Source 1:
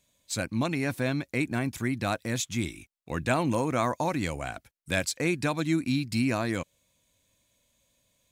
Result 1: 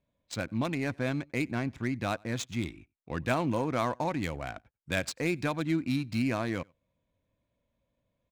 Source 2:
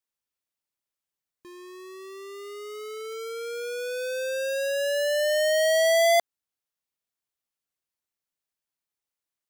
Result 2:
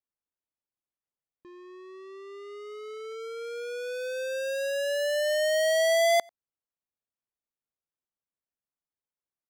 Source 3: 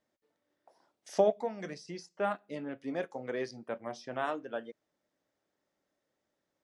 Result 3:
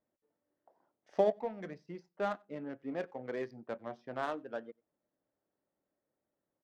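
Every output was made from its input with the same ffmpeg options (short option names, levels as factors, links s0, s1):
-filter_complex "[0:a]adynamicsmooth=sensitivity=6.5:basefreq=1500,asplit=2[s0][s1];[s1]adelay=93.29,volume=0.0355,highshelf=f=4000:g=-2.1[s2];[s0][s2]amix=inputs=2:normalize=0,volume=0.75"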